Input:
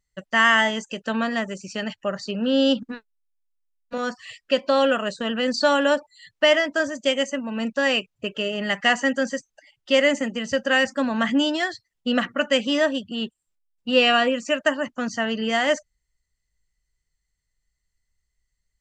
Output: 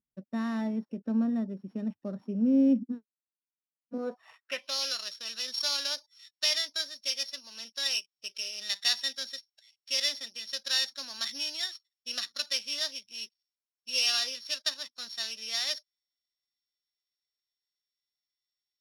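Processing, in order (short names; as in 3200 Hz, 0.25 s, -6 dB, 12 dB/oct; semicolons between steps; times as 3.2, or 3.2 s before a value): sample sorter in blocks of 8 samples; band-pass sweep 240 Hz -> 4400 Hz, 3.92–4.77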